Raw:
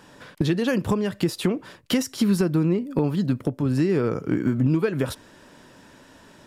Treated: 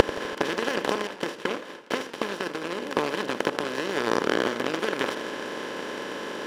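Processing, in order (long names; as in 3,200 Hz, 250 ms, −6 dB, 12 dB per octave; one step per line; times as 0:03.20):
compressor on every frequency bin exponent 0.2
gate with flip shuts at −14 dBFS, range −40 dB
parametric band 120 Hz −13 dB 1.8 octaves
leveller curve on the samples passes 2
0:01.07–0:02.82: downward expander −56 dBFS
mid-hump overdrive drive 26 dB, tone 1,700 Hz, clips at −14 dBFS
boost into a limiter +18.5 dB
feedback echo with a swinging delay time 83 ms, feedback 66%, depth 217 cents, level −16 dB
level −1 dB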